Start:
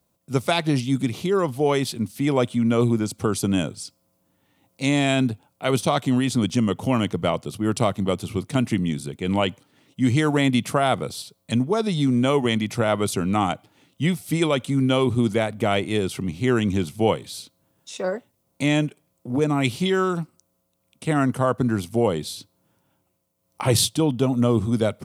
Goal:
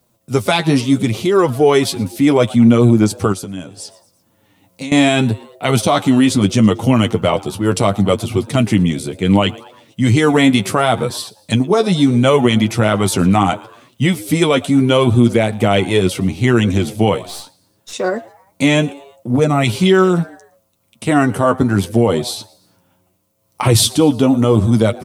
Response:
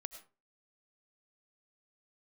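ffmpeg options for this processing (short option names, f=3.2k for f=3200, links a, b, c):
-filter_complex "[0:a]asettb=1/sr,asplit=3[a][b][c];[a]atrim=end=17.224[d];[b]atrim=start=17.22:end=17.93,asetpts=PTS-STARTPTS,afade=t=in:d=0.004:c=qsin,afade=t=out:st=0.706:d=0.004:c=qsin,aeval=exprs='(tanh(39.8*val(0)+0.7)-tanh(0.7))/39.8':c=same[e];[c]atrim=start=17.926[f];[d][e]acrossfade=d=0.004:c1=hsin:c2=qsin[g];[g][f]acrossfade=d=0.004:c1=qsin:c2=hsin,asplit=4[h][i][j][k];[i]adelay=115,afreqshift=130,volume=-23.5dB[l];[j]adelay=230,afreqshift=260,volume=-29.7dB[m];[k]adelay=345,afreqshift=390,volume=-35.9dB[n];[h][l][m][n]amix=inputs=4:normalize=0,asettb=1/sr,asplit=3[o][p][q];[o]atrim=end=3.324[r];[p]atrim=start=3.32:end=4.92,asetpts=PTS-STARTPTS,afade=t=in:d=0.004:c=qsin,afade=t=out:st=1.596:d=0.004:c=qsin,acompressor=threshold=-34dB:ratio=8[s];[q]atrim=start=4.916[t];[r][s]acrossfade=d=0.004:c1=hsin:c2=qsin[u];[u][t]acrossfade=d=0.004:c1=qsin:c2=hsin,flanger=delay=8:depth=3.5:regen=25:speed=0.72:shape=triangular,alimiter=level_in=13.5dB:limit=-1dB:release=50:level=0:latency=1,volume=-1dB"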